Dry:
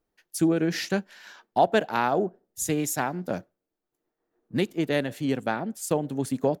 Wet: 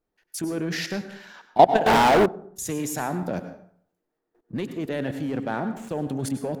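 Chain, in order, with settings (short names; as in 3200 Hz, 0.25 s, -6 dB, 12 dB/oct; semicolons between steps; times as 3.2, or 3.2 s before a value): 5.22–5.89 median filter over 9 samples; in parallel at -11 dB: wavefolder -22.5 dBFS; on the sum: level quantiser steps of 18 dB; high shelf 3900 Hz -6 dB; plate-style reverb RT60 0.62 s, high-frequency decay 0.65×, pre-delay 85 ms, DRR 9.5 dB; 1.86–2.26 sample leveller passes 5; gain +8.5 dB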